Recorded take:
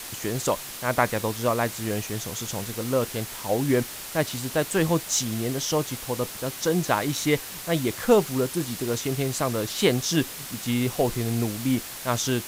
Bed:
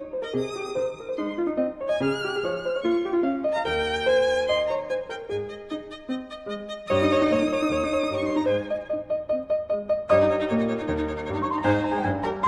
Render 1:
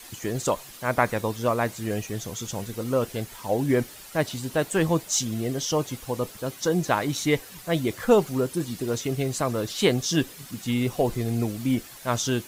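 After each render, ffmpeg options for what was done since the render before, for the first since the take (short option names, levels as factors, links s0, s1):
-af "afftdn=nr=10:nf=-38"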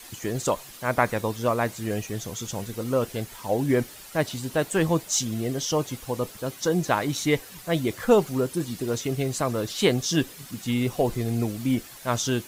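-af anull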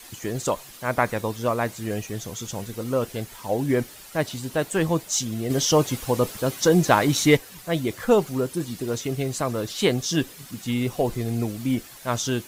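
-filter_complex "[0:a]asettb=1/sr,asplit=3[s0][s1][s2];[s0]atrim=end=5.504[s3];[s1]atrim=start=5.5:end=7.37,asetpts=PTS-STARTPTS,afade=t=in:d=0.004:c=qsin,afade=t=out:st=1.866:d=0.004:c=qsin,acontrast=62[s4];[s2]atrim=start=7.366[s5];[s3][s4]acrossfade=d=0.004:c1=hsin:c2=qsin[s6];[s6][s5]acrossfade=d=0.004:c1=qsin:c2=hsin"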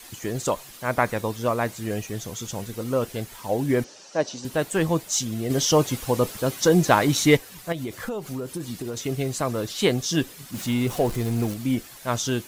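-filter_complex "[0:a]asettb=1/sr,asplit=3[s0][s1][s2];[s0]atrim=end=3.844[s3];[s1]atrim=start=3.84:end=4.45,asetpts=PTS-STARTPTS,afade=t=in:d=0.004:c=qsin,afade=t=out:st=0.606:d=0.004:c=qsin,highpass=230,equalizer=f=540:t=q:w=4:g=6,equalizer=f=1300:t=q:w=4:g=-4,equalizer=f=2100:t=q:w=4:g=-8,equalizer=f=3400:t=q:w=4:g=-5,equalizer=f=5900:t=q:w=4:g=8,lowpass=f=6500:w=0.5412,lowpass=f=6500:w=1.3066[s4];[s2]atrim=start=4.446[s5];[s3][s4]acrossfade=d=0.004:c1=hsin:c2=qsin[s6];[s6][s5]acrossfade=d=0.004:c1=qsin:c2=hsin,asettb=1/sr,asplit=3[s7][s8][s9];[s7]atrim=end=7.724[s10];[s8]atrim=start=7.72:end=8.97,asetpts=PTS-STARTPTS,afade=t=in:d=0.004:c=qsin,afade=t=out:st=1.246:d=0.004:c=qsin,acompressor=threshold=0.0501:ratio=10:attack=3.2:release=140:knee=1:detection=peak[s11];[s9]atrim=start=8.966[s12];[s10][s11]acrossfade=d=0.004:c1=hsin:c2=qsin[s13];[s13][s12]acrossfade=d=0.004:c1=qsin:c2=hsin,asettb=1/sr,asplit=3[s14][s15][s16];[s14]atrim=end=10.544[s17];[s15]atrim=start=10.54:end=11.54,asetpts=PTS-STARTPTS,afade=t=in:d=0.004:c=qsin,afade=t=out:st=0.996:d=0.004:c=qsin,aeval=exprs='val(0)+0.5*0.0224*sgn(val(0))':c=same[s18];[s16]atrim=start=11.536[s19];[s17][s18]acrossfade=d=0.004:c1=hsin:c2=qsin[s20];[s20][s19]acrossfade=d=0.004:c1=qsin:c2=hsin"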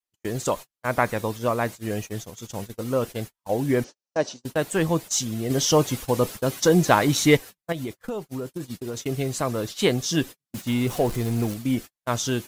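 -af "agate=range=0.00316:threshold=0.0251:ratio=16:detection=peak"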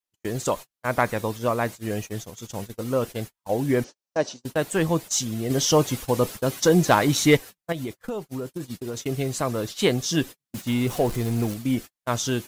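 -af "volume=2.24,asoftclip=hard,volume=0.447"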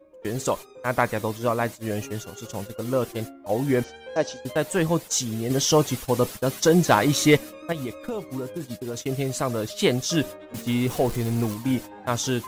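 -filter_complex "[1:a]volume=0.126[s0];[0:a][s0]amix=inputs=2:normalize=0"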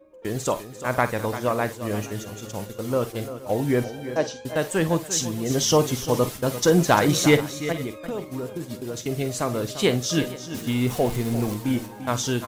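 -filter_complex "[0:a]asplit=2[s0][s1];[s1]adelay=48,volume=0.2[s2];[s0][s2]amix=inputs=2:normalize=0,asplit=2[s3][s4];[s4]aecho=0:1:57|345|470:0.133|0.237|0.106[s5];[s3][s5]amix=inputs=2:normalize=0"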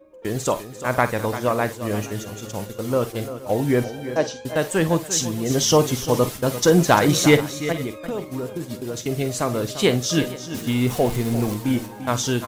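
-af "volume=1.33,alimiter=limit=0.708:level=0:latency=1"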